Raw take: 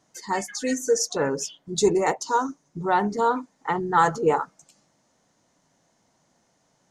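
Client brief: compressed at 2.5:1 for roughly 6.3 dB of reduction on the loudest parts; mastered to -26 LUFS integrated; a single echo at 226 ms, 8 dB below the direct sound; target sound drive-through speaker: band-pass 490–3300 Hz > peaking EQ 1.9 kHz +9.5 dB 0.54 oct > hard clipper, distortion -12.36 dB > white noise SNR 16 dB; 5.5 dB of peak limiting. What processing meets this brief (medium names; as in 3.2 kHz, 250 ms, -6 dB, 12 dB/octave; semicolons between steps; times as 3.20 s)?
compression 2.5:1, threshold -24 dBFS; peak limiter -18.5 dBFS; band-pass 490–3300 Hz; peaking EQ 1.9 kHz +9.5 dB 0.54 oct; delay 226 ms -8 dB; hard clipper -24.5 dBFS; white noise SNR 16 dB; trim +6 dB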